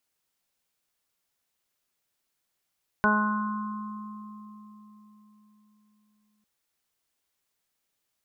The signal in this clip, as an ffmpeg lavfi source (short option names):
-f lavfi -i "aevalsrc='0.0631*pow(10,-3*t/4.42)*sin(2*PI*211*t)+0.0335*pow(10,-3*t/0.64)*sin(2*PI*422*t)+0.0355*pow(10,-3*t/0.81)*sin(2*PI*633*t)+0.0376*pow(10,-3*t/0.93)*sin(2*PI*844*t)+0.0708*pow(10,-3*t/3.18)*sin(2*PI*1055*t)+0.015*pow(10,-3*t/2.67)*sin(2*PI*1266*t)+0.0841*pow(10,-3*t/1.25)*sin(2*PI*1477*t)':d=3.4:s=44100"